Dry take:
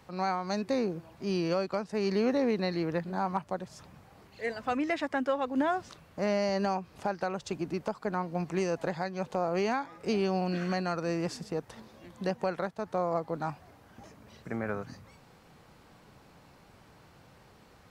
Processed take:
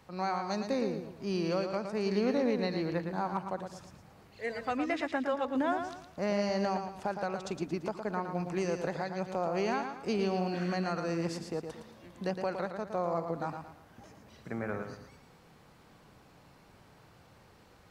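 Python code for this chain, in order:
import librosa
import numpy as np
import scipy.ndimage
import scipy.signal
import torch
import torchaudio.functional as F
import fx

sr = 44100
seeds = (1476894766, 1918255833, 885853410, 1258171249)

y = fx.echo_feedback(x, sr, ms=113, feedback_pct=36, wet_db=-7.0)
y = y * librosa.db_to_amplitude(-2.5)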